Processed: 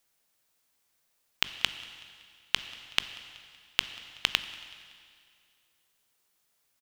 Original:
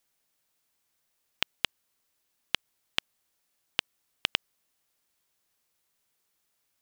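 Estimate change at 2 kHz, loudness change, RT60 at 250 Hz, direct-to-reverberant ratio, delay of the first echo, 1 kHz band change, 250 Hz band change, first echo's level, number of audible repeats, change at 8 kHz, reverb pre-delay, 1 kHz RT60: +2.0 dB, +1.5 dB, 2.2 s, 10.5 dB, 188 ms, +1.0 dB, −1.0 dB, −24.0 dB, 3, +3.5 dB, 15 ms, 2.2 s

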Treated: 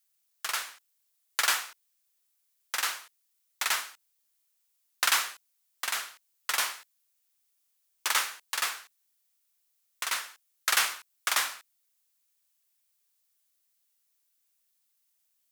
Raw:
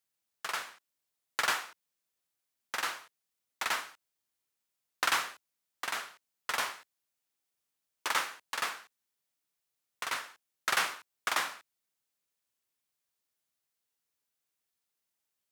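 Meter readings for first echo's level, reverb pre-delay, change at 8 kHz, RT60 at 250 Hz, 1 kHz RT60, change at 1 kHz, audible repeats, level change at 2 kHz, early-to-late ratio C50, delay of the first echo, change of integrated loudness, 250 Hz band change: no echo audible, no reverb audible, +8.5 dB, no reverb audible, no reverb audible, +0.5 dB, no echo audible, +2.5 dB, no reverb audible, no echo audible, +4.5 dB, −5.5 dB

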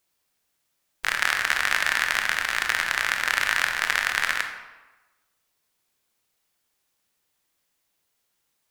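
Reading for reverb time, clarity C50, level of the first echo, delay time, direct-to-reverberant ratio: 1.1 s, 6.5 dB, no echo audible, no echo audible, 4.5 dB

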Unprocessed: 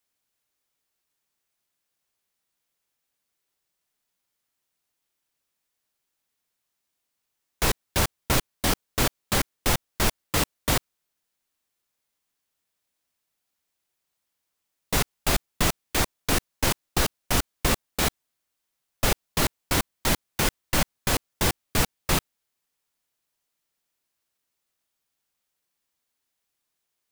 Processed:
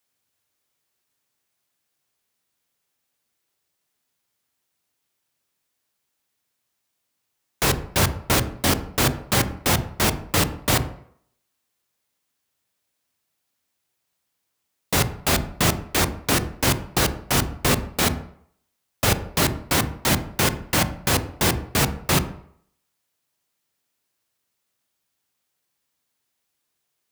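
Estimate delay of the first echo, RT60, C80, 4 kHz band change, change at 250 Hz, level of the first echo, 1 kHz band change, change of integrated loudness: no echo audible, 0.65 s, 17.0 dB, +3.5 dB, +5.0 dB, no echo audible, +4.0 dB, +4.0 dB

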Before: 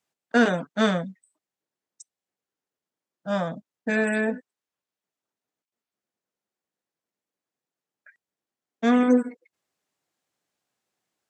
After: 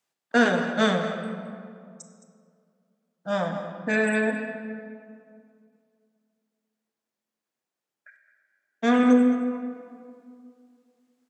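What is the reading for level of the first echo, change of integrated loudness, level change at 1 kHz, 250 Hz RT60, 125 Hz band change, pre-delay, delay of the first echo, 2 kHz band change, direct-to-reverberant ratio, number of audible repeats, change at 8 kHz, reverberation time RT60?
−14.0 dB, 0.0 dB, +1.5 dB, 2.7 s, −0.5 dB, 26 ms, 217 ms, +2.0 dB, 4.5 dB, 1, +1.5 dB, 2.3 s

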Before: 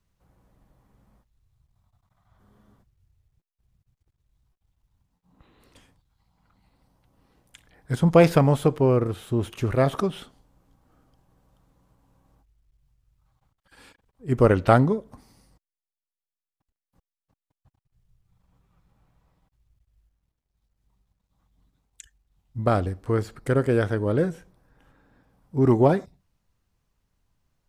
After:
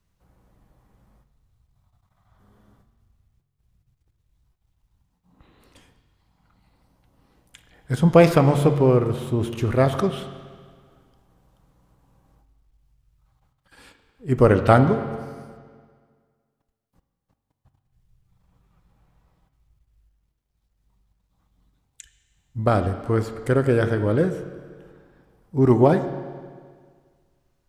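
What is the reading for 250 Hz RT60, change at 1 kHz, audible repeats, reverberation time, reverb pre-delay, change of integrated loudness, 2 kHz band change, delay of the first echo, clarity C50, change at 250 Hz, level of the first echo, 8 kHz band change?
1.8 s, +2.5 dB, no echo audible, 1.8 s, 9 ms, +2.0 dB, +2.5 dB, no echo audible, 10.5 dB, +2.5 dB, no echo audible, +2.0 dB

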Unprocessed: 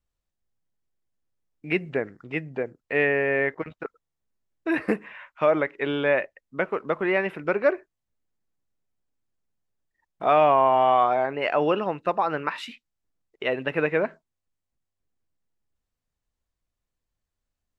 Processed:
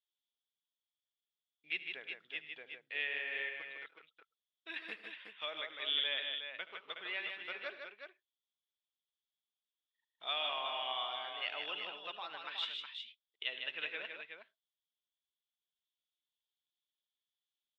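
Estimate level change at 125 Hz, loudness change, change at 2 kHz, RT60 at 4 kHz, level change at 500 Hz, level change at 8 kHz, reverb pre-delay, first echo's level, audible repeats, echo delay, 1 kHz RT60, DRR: below −35 dB, −15.0 dB, −11.5 dB, no reverb audible, −26.5 dB, can't be measured, no reverb audible, −17.0 dB, 3, 75 ms, no reverb audible, no reverb audible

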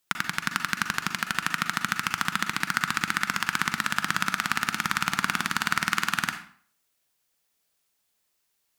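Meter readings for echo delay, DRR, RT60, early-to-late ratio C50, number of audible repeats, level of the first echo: no echo audible, 6.5 dB, 0.55 s, 8.5 dB, no echo audible, no echo audible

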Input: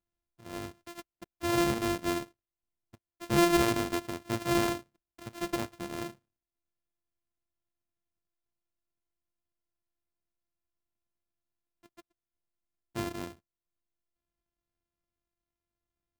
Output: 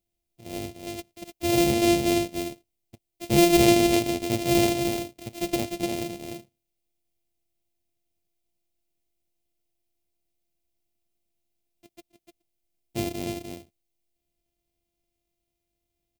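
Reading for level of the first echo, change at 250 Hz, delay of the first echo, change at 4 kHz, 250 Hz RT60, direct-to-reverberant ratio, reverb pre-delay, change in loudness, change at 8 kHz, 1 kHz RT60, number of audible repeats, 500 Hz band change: −5.5 dB, +8.0 dB, 299 ms, +8.5 dB, no reverb audible, no reverb audible, no reverb audible, +7.0 dB, +9.0 dB, no reverb audible, 1, +8.0 dB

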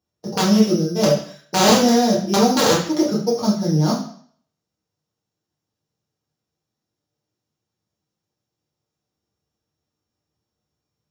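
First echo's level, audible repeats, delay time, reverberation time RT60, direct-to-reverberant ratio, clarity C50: no echo audible, no echo audible, no echo audible, 0.55 s, −7.0 dB, 5.0 dB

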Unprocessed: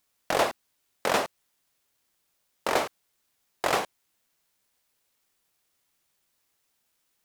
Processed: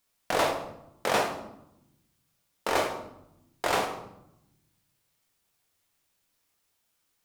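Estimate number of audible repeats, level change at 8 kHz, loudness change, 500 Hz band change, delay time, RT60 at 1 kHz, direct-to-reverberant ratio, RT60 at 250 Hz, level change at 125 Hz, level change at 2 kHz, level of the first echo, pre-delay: no echo audible, −1.0 dB, −1.0 dB, 0.0 dB, no echo audible, 0.80 s, 2.0 dB, 1.4 s, +2.0 dB, −0.5 dB, no echo audible, 4 ms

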